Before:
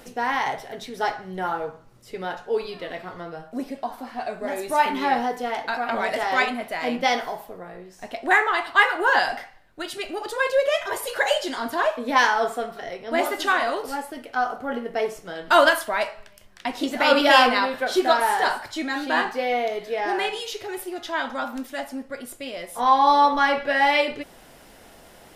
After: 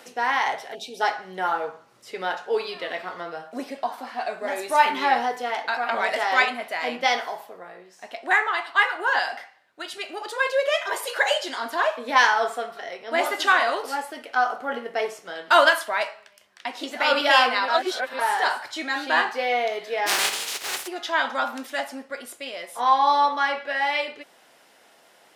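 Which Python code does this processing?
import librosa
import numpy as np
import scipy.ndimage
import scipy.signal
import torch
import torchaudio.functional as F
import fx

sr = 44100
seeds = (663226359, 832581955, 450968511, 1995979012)

y = fx.spec_box(x, sr, start_s=0.75, length_s=0.26, low_hz=900.0, high_hz=2300.0, gain_db=-23)
y = fx.spec_flatten(y, sr, power=0.23, at=(20.06, 20.86), fade=0.02)
y = fx.edit(y, sr, fx.reverse_span(start_s=17.68, length_s=0.51), tone=tone)
y = fx.weighting(y, sr, curve='A')
y = fx.rider(y, sr, range_db=5, speed_s=2.0)
y = y * librosa.db_to_amplitude(-1.0)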